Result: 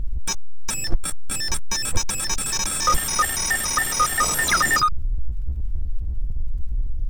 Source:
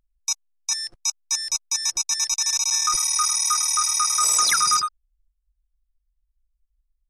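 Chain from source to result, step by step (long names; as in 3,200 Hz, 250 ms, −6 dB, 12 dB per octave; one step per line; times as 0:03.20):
pitch shifter gated in a rhythm +6.5 semitones, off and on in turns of 140 ms
power curve on the samples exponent 0.5
spectral tilt −3.5 dB per octave
level +1 dB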